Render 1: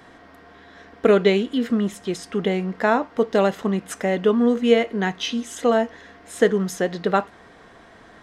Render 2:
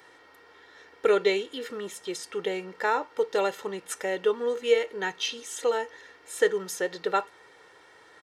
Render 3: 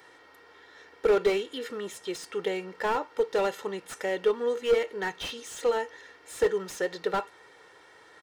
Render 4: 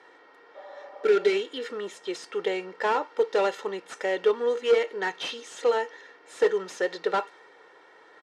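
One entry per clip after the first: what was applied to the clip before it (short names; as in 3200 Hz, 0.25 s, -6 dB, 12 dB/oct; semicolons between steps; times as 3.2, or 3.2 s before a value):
HPF 220 Hz 6 dB/oct; tilt +1.5 dB/oct; comb 2.2 ms, depth 75%; gain -7 dB
slew limiter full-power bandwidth 68 Hz
spectral repair 0.58–1.33, 460–1300 Hz after; BPF 280–6900 Hz; mismatched tape noise reduction decoder only; gain +3 dB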